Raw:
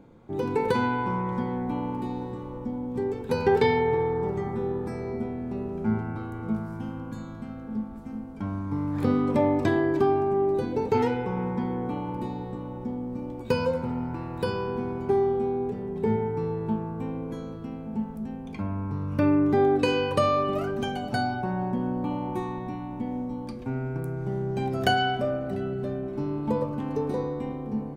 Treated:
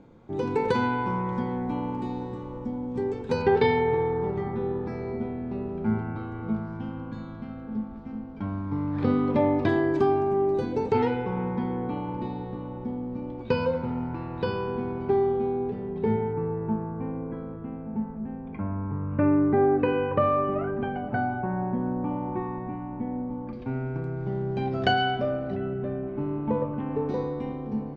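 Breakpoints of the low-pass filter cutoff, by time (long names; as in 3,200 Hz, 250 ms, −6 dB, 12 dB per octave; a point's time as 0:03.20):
low-pass filter 24 dB per octave
7,500 Hz
from 0:03.42 4,500 Hz
from 0:09.69 7,600 Hz
from 0:10.92 4,400 Hz
from 0:16.33 2,100 Hz
from 0:23.53 4,700 Hz
from 0:25.56 2,700 Hz
from 0:27.09 5,500 Hz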